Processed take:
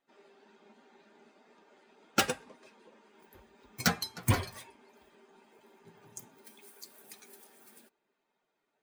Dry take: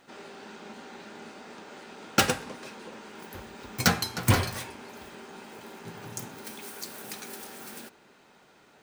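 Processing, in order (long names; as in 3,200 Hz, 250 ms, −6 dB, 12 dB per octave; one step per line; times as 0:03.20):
spectral dynamics exaggerated over time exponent 1.5
level −3.5 dB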